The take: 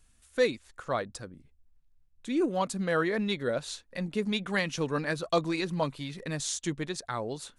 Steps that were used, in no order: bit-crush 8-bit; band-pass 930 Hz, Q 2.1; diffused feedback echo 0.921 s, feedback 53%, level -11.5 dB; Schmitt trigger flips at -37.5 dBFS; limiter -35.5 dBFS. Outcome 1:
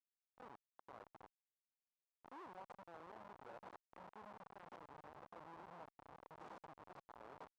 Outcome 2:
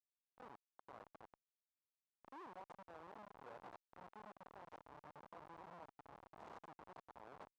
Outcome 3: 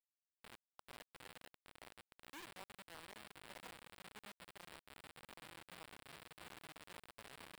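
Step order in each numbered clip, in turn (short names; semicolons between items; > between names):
limiter > diffused feedback echo > bit-crush > Schmitt trigger > band-pass; limiter > bit-crush > diffused feedback echo > Schmitt trigger > band-pass; diffused feedback echo > limiter > Schmitt trigger > band-pass > bit-crush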